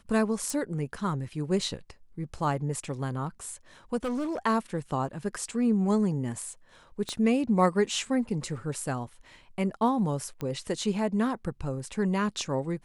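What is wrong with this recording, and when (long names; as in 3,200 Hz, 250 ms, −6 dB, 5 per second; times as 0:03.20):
0:00.50: click
0:03.96–0:04.38: clipping −27 dBFS
0:07.09: click −20 dBFS
0:10.41: click −21 dBFS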